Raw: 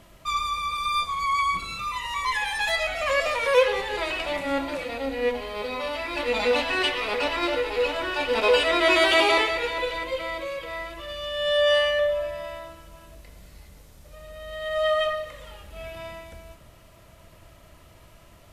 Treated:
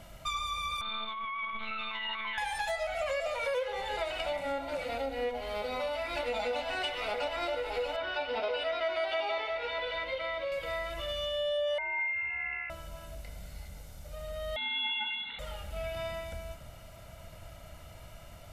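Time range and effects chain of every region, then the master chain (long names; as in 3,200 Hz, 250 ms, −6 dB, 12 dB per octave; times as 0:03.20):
0:00.81–0:02.38: one-pitch LPC vocoder at 8 kHz 220 Hz + downward compressor 5 to 1, threshold −30 dBFS
0:07.96–0:10.52: Savitzky-Golay smoothing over 15 samples + low-shelf EQ 110 Hz −9 dB + notch comb filter 170 Hz
0:11.78–0:12.70: high-frequency loss of the air 320 metres + comb filter 7.3 ms, depth 33% + voice inversion scrambler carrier 2,700 Hz
0:14.56–0:15.39: high-pass filter 130 Hz 6 dB per octave + voice inversion scrambler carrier 4,000 Hz
whole clip: dynamic equaliser 680 Hz, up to +6 dB, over −35 dBFS, Q 1.5; comb filter 1.4 ms, depth 51%; downward compressor 5 to 1, threshold −32 dBFS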